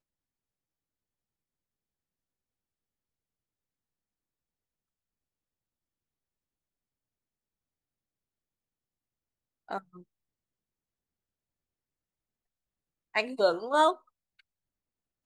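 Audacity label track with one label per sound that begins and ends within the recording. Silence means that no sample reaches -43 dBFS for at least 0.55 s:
9.690000	10.000000	sound
13.140000	13.950000	sound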